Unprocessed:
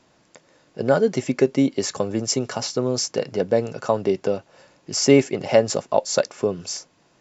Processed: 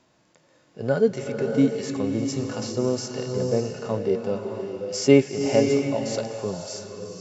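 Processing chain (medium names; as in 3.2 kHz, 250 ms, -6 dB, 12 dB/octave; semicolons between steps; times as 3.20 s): harmonic-percussive split percussive -13 dB; swelling reverb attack 610 ms, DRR 4 dB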